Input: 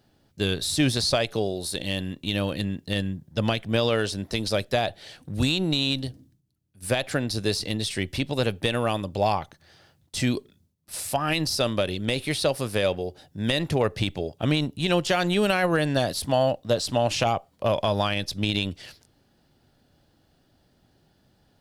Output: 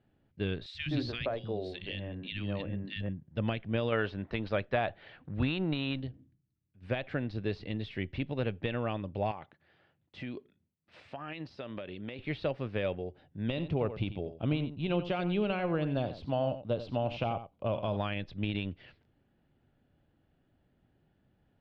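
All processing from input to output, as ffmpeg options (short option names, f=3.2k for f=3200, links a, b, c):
-filter_complex "[0:a]asettb=1/sr,asplit=3[a][b][c];[a]atrim=end=0.664[d];[b]atrim=start=0.66:end=3.09,asetpts=PTS-STARTPTS,afade=t=in:d=0.004:c=qsin,afade=t=out:st=2.426:d=0.004:c=qsin,highshelf=f=3k:g=6.5,bandreject=f=60:t=h:w=6,bandreject=f=120:t=h:w=6,bandreject=f=180:t=h:w=6,bandreject=f=240:t=h:w=6,bandreject=f=300:t=h:w=6,bandreject=f=360:t=h:w=6,bandreject=f=420:t=h:w=6,bandreject=f=480:t=h:w=6,bandreject=f=540:t=h:w=6,acrossover=split=200|1500[e][f][g];[e]adelay=80[h];[f]adelay=130[i];[h][i][g]amix=inputs=3:normalize=0,atrim=end_sample=107163[j];[c]atrim=start=3.086[k];[d][j]acrossfade=d=0.004:c1=hsin:c2=qsin[l];[l][k]acrossfade=d=0.004:c1=qsin:c2=hsin,asettb=1/sr,asplit=3[m][n][o];[m]atrim=end=3.924[p];[n]atrim=start=3.92:end=6,asetpts=PTS-STARTPTS,afade=t=in:d=0.004:c=qsin,afade=t=out:st=2.076:d=0.004:c=qsin,lowpass=7.1k,equalizer=f=1.2k:t=o:w=1.8:g=7.5[q];[o]atrim=start=5.996[r];[p][q]acrossfade=d=0.004:c1=hsin:c2=qsin[s];[s][r]acrossfade=d=0.004:c1=qsin:c2=hsin,asettb=1/sr,asplit=3[t][u][v];[t]atrim=end=9.314[w];[u]atrim=start=9.31:end=12.19,asetpts=PTS-STARTPTS,afade=t=in:d=0.004:c=qsin,afade=t=out:st=2.876:d=0.004:c=qsin,highpass=f=230:p=1,acompressor=threshold=-28dB:ratio=4:attack=3.2:release=140:knee=1:detection=peak[x];[v]atrim=start=12.186[y];[w][x]acrossfade=d=0.004:c1=hsin:c2=qsin[z];[z][y]acrossfade=d=0.004:c1=qsin:c2=hsin,asettb=1/sr,asplit=3[aa][ab][ac];[aa]atrim=end=13.484[ad];[ab]atrim=start=13.48:end=17.97,asetpts=PTS-STARTPTS,afade=t=in:d=0.004:c=qsin,afade=t=out:st=4.486:d=0.004:c=qsin,equalizer=f=1.8k:t=o:w=0.4:g=-11.5,aecho=1:1:90:0.251,atrim=end_sample=198009[ae];[ac]atrim=start=17.966[af];[ad][ae]acrossfade=d=0.004:c1=hsin:c2=qsin[ag];[ag][af]acrossfade=d=0.004:c1=qsin:c2=hsin,lowpass=f=2.7k:w=0.5412,lowpass=f=2.7k:w=1.3066,equalizer=f=960:w=0.6:g=-4.5,volume=-6dB"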